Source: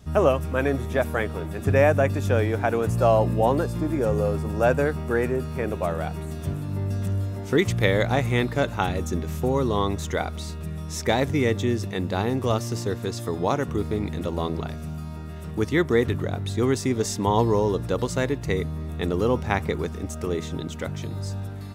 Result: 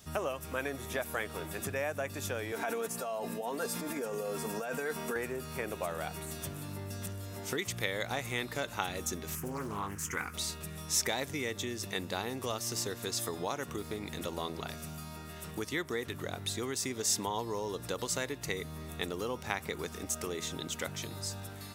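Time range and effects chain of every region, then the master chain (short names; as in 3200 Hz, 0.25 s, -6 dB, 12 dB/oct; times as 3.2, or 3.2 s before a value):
2.52–5.16 negative-ratio compressor -26 dBFS + HPF 190 Hz + comb 4.4 ms, depth 61%
9.35–10.34 fixed phaser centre 1600 Hz, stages 4 + doubler 19 ms -11 dB + Doppler distortion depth 0.37 ms
whole clip: compressor, threshold -26 dBFS; tilt +3 dB/oct; gain -3 dB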